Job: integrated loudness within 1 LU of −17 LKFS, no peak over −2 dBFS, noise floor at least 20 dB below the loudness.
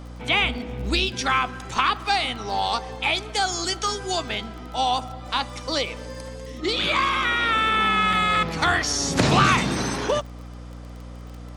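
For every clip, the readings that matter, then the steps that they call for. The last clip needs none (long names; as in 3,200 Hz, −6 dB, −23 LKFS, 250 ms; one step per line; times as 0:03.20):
crackle rate 23 per second; mains hum 60 Hz; hum harmonics up to 300 Hz; level of the hum −36 dBFS; integrated loudness −22.5 LKFS; sample peak −3.0 dBFS; target loudness −17.0 LKFS
→ click removal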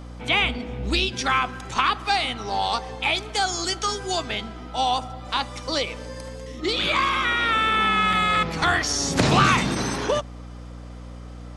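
crackle rate 0 per second; mains hum 60 Hz; hum harmonics up to 300 Hz; level of the hum −36 dBFS
→ mains-hum notches 60/120/180/240/300 Hz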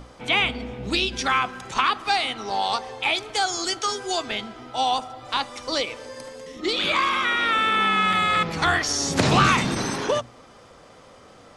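mains hum none found; integrated loudness −22.5 LKFS; sample peak −3.0 dBFS; target loudness −17.0 LKFS
→ level +5.5 dB
brickwall limiter −2 dBFS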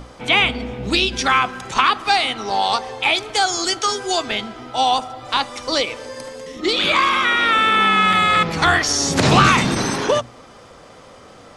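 integrated loudness −17.5 LKFS; sample peak −2.0 dBFS; background noise floor −44 dBFS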